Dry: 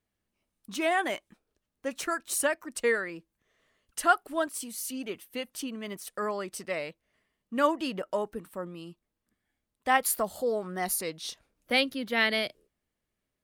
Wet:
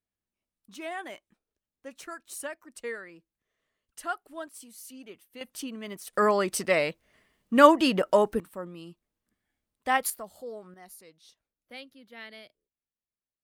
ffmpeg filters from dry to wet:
ffmpeg -i in.wav -af "asetnsamples=nb_out_samples=441:pad=0,asendcmd='5.41 volume volume -1dB;6.13 volume volume 9dB;8.4 volume volume -1dB;10.1 volume volume -11dB;10.74 volume volume -19dB',volume=-10dB" out.wav

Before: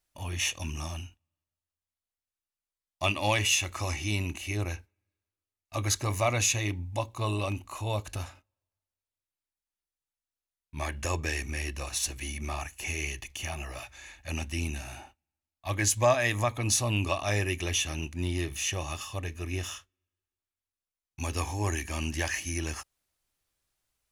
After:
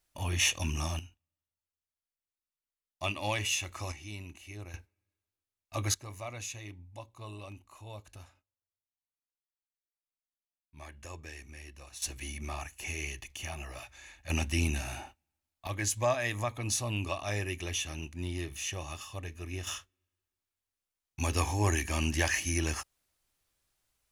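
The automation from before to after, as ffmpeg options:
ffmpeg -i in.wav -af "asetnsamples=nb_out_samples=441:pad=0,asendcmd='0.99 volume volume -6dB;3.92 volume volume -13dB;4.74 volume volume -2.5dB;5.94 volume volume -14.5dB;12.02 volume volume -4dB;14.3 volume volume 3dB;15.67 volume volume -5.5dB;19.67 volume volume 2dB',volume=2.5dB" out.wav

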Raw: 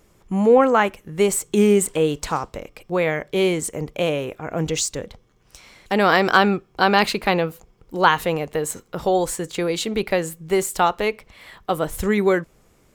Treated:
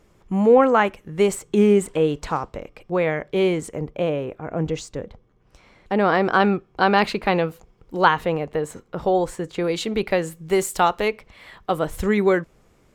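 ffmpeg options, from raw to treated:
ffmpeg -i in.wav -af "asetnsamples=nb_out_samples=441:pad=0,asendcmd='1.35 lowpass f 2300;3.79 lowpass f 1100;6.4 lowpass f 2400;7.34 lowpass f 4700;8.08 lowpass f 1800;9.64 lowpass f 4400;10.35 lowpass f 11000;11.08 lowpass f 4600',lowpass=frequency=4000:poles=1" out.wav

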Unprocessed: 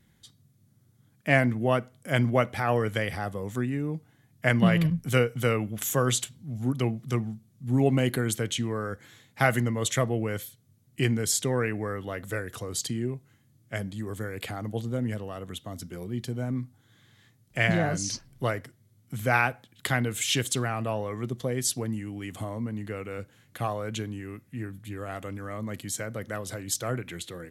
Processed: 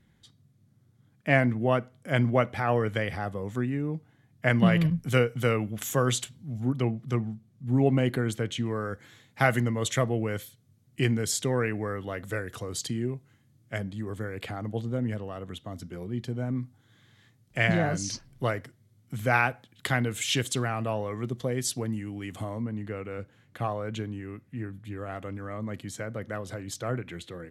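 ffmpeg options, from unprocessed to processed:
ffmpeg -i in.wav -af "asetnsamples=nb_out_samples=441:pad=0,asendcmd='4.51 lowpass f 6200;6.6 lowpass f 2500;8.66 lowpass f 6400;13.78 lowpass f 3100;16.61 lowpass f 6500;22.62 lowpass f 2400',lowpass=frequency=3400:poles=1" out.wav

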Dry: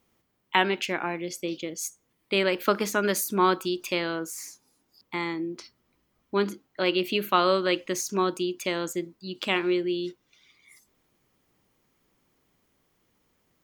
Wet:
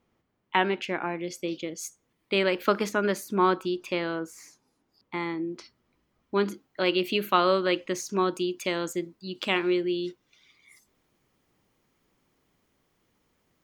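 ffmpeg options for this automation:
ffmpeg -i in.wav -af "asetnsamples=nb_out_samples=441:pad=0,asendcmd='1.21 lowpass f 5200;2.89 lowpass f 2200;5.48 lowpass f 4600;6.48 lowpass f 11000;7.37 lowpass f 4200;8.34 lowpass f 9000',lowpass=frequency=2100:poles=1" out.wav

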